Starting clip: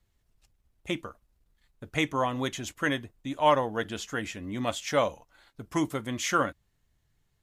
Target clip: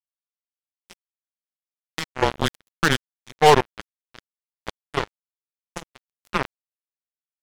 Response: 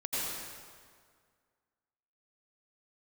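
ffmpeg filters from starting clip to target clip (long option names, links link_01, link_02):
-filter_complex "[0:a]asettb=1/sr,asplit=3[link_01][link_02][link_03];[link_01]atrim=end=2.224[link_04];[link_02]atrim=start=2.22:end=3.61,asetpts=PTS-STARTPTS,afade=type=in:duration=0.004:curve=qsin,afade=type=out:start_time=1.386:duration=0.004:curve=qsin,acontrast=63[link_05];[link_03]atrim=start=3.606[link_06];[link_04][link_05]acrossfade=duration=0.004:curve1=hsin:curve2=qsin[link_07];[link_07][link_06]acrossfade=duration=0.004:curve1=qsin:curve2=hsin,afreqshift=-150,acrusher=bits=2:mix=0:aa=0.5,volume=2.5dB"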